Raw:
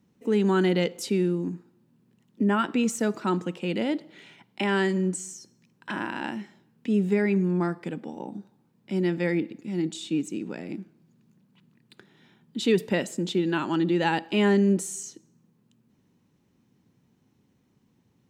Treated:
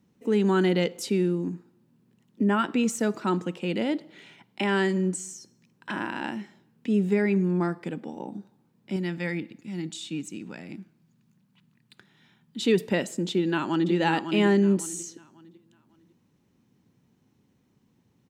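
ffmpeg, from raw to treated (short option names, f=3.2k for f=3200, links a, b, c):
-filter_complex "[0:a]asettb=1/sr,asplit=3[a][b][c];[a]atrim=end=8.964[d];[b]atrim=start=8.96:end=12.6,asetpts=PTS-STARTPTS,afade=t=in:d=0.004:c=qsin,afade=t=out:st=3.636:d=0.004:c=qsin,equalizer=f=400:t=o:w=1.6:g=-8.5[e];[c]atrim=start=12.596[f];[d][e]acrossfade=d=0.004:c1=hsin:c2=qsin[g];[g][f]acrossfade=d=0.004:c1=qsin:c2=hsin,asplit=2[h][i];[i]afade=t=in:st=13.31:d=0.01,afade=t=out:st=13.92:d=0.01,aecho=0:1:550|1100|1650|2200:0.446684|0.134005|0.0402015|0.0120605[j];[h][j]amix=inputs=2:normalize=0"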